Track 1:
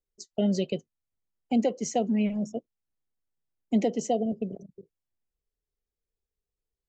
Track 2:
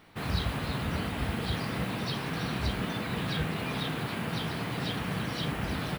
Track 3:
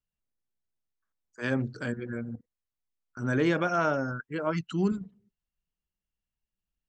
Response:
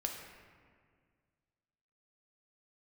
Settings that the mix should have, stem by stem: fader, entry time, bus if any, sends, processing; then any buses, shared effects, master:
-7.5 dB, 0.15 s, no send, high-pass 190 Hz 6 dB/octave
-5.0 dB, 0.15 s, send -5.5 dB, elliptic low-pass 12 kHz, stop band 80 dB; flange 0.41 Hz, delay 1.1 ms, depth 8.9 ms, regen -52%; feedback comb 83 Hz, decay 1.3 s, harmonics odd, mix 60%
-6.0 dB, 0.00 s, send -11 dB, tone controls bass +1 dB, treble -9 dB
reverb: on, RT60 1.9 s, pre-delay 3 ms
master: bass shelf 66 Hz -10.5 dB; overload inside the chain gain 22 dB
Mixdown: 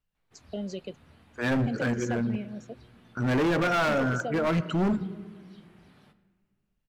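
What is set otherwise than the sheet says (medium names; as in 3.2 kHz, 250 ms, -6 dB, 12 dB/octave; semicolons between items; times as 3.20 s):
stem 2 -5.0 dB -> -17.0 dB; stem 3 -6.0 dB -> +5.0 dB; master: missing bass shelf 66 Hz -10.5 dB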